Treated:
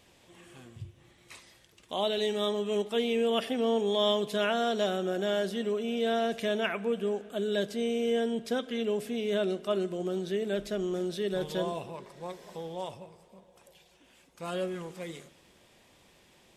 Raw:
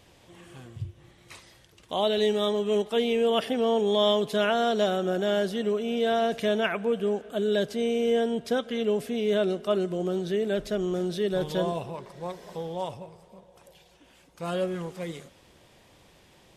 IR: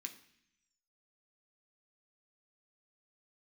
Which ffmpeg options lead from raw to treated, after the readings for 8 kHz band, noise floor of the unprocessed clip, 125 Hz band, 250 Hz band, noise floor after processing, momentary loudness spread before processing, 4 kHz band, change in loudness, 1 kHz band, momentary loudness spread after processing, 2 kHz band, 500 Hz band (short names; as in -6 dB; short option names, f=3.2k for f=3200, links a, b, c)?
-1.5 dB, -58 dBFS, -5.5 dB, -3.5 dB, -62 dBFS, 14 LU, -2.5 dB, -4.0 dB, -4.5 dB, 14 LU, -3.0 dB, -4.0 dB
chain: -filter_complex "[0:a]asplit=2[a][b];[1:a]atrim=start_sample=2205[c];[b][c]afir=irnorm=-1:irlink=0,volume=-2.5dB[d];[a][d]amix=inputs=2:normalize=0,volume=-5.5dB"